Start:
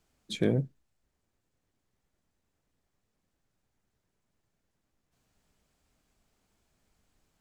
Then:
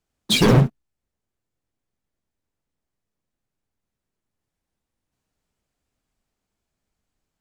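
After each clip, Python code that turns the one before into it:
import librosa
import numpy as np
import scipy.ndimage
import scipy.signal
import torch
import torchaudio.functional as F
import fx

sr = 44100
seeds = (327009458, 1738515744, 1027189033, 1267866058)

y = fx.leveller(x, sr, passes=5)
y = fx.echo_pitch(y, sr, ms=99, semitones=3, count=3, db_per_echo=-6.0)
y = y * librosa.db_to_amplitude(3.0)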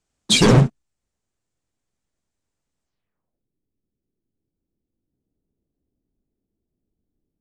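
y = fx.filter_sweep_lowpass(x, sr, from_hz=8000.0, to_hz=340.0, start_s=2.84, end_s=3.45, q=1.9)
y = y * librosa.db_to_amplitude(1.5)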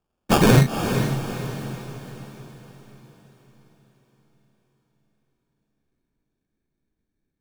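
y = fx.sample_hold(x, sr, seeds[0], rate_hz=2000.0, jitter_pct=0)
y = fx.echo_diffused(y, sr, ms=464, feedback_pct=48, wet_db=-7.5)
y = y * librosa.db_to_amplitude(-1.5)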